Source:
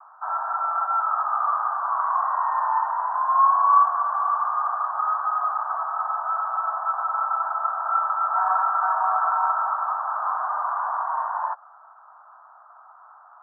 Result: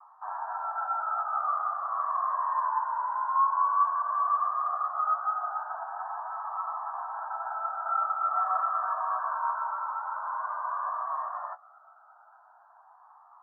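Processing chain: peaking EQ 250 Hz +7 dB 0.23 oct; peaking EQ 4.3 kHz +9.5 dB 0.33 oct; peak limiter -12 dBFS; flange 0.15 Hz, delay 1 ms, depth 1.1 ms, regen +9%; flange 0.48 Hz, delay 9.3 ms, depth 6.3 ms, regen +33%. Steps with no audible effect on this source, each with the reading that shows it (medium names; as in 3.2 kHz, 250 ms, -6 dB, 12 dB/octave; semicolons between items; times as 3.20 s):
peaking EQ 250 Hz: input has nothing below 570 Hz; peaking EQ 4.3 kHz: input has nothing above 1.7 kHz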